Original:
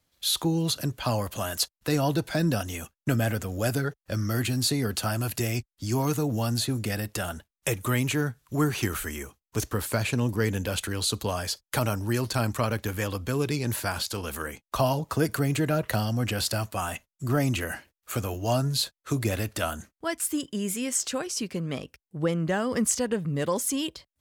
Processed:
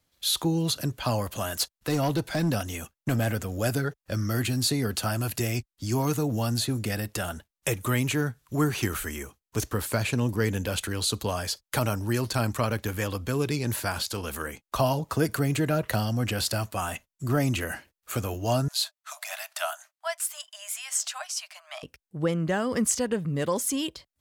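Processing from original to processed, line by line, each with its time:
1.31–3.28 overloaded stage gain 20 dB
18.68–21.83 Chebyshev high-pass 600 Hz, order 10

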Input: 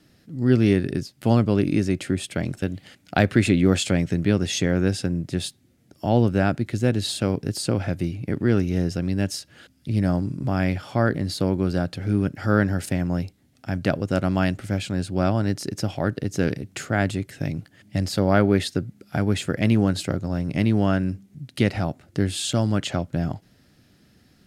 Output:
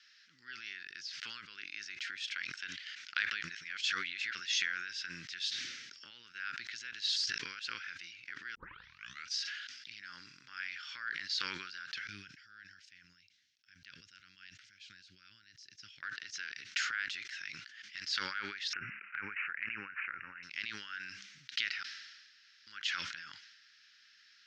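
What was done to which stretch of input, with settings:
3.32–4.35 reverse
5.46–6.11 resonant low shelf 740 Hz +7 dB, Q 1.5
7.16–7.65 reverse
8.55 tape start 0.83 s
12.07–16.03 passive tone stack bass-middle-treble 10-0-1
18.73–20.43 careless resampling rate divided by 8×, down none, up filtered
21.83–22.67 room tone
whole clip: compressor 4:1, threshold -30 dBFS; elliptic band-pass 1500–5800 Hz, stop band 40 dB; sustainer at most 41 dB/s; gain +3 dB

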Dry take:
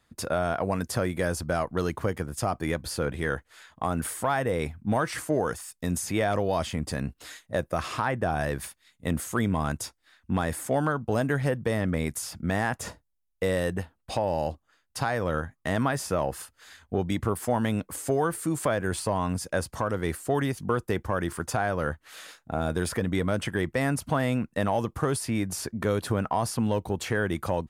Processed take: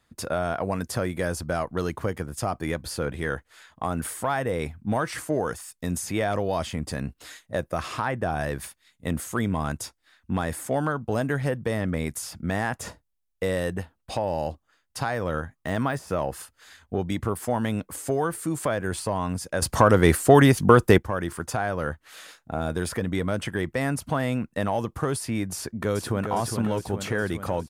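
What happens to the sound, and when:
15.13–16.13 de-esser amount 85%
19.62–20.98 gain +11.5 dB
25.54–26.27 echo throw 0.41 s, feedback 65%, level -6 dB

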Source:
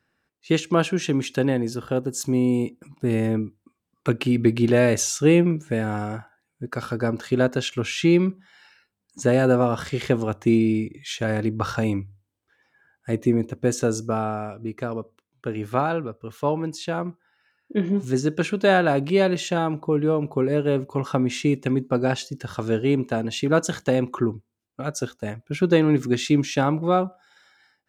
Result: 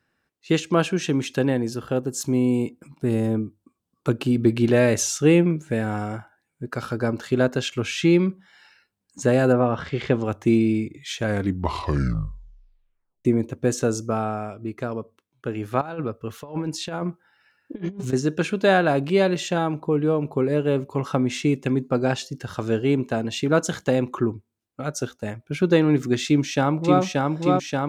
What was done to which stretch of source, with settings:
3.09–4.5 bell 2100 Hz -8.5 dB 0.78 oct
9.52–10.24 LPF 2200 Hz -> 5300 Hz
11.24 tape stop 2.01 s
15.81–18.13 negative-ratio compressor -28 dBFS, ratio -0.5
26.26–27.01 echo throw 0.58 s, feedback 80%, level -2 dB

